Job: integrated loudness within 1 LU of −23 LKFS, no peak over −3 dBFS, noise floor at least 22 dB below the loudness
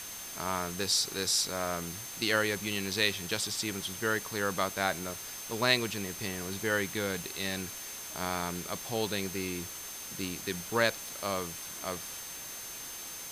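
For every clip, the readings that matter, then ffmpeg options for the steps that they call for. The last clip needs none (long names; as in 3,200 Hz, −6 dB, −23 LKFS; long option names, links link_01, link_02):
interfering tone 6,300 Hz; level of the tone −45 dBFS; background noise floor −43 dBFS; target noise floor −55 dBFS; integrated loudness −32.5 LKFS; sample peak −9.0 dBFS; target loudness −23.0 LKFS
→ -af "bandreject=frequency=6300:width=30"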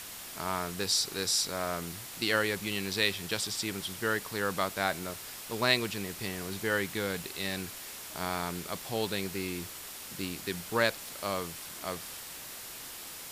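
interfering tone none found; background noise floor −44 dBFS; target noise floor −55 dBFS
→ -af "afftdn=noise_reduction=11:noise_floor=-44"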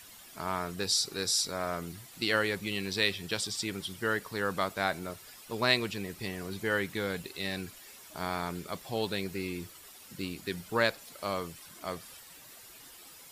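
background noise floor −52 dBFS; target noise floor −55 dBFS
→ -af "afftdn=noise_reduction=6:noise_floor=-52"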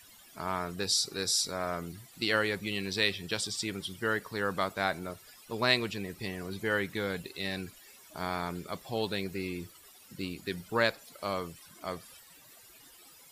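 background noise floor −56 dBFS; integrated loudness −32.5 LKFS; sample peak −9.0 dBFS; target loudness −23.0 LKFS
→ -af "volume=9.5dB,alimiter=limit=-3dB:level=0:latency=1"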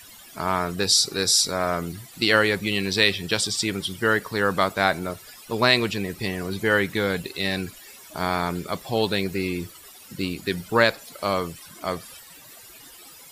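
integrated loudness −23.5 LKFS; sample peak −3.0 dBFS; background noise floor −46 dBFS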